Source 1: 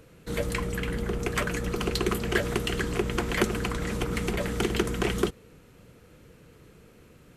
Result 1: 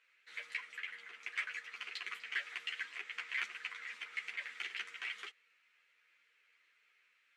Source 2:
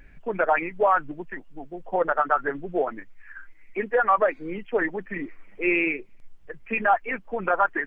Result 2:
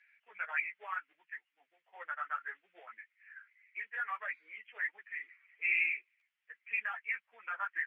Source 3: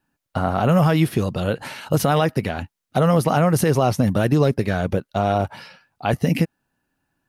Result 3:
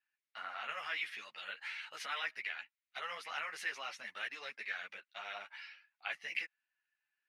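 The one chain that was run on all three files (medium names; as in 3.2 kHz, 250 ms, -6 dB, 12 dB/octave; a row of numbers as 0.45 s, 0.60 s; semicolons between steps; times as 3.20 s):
ladder band-pass 2.4 kHz, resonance 50%; short-mantissa float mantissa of 6-bit; three-phase chorus; trim +4 dB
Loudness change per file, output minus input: -13.0 LU, -12.0 LU, -21.5 LU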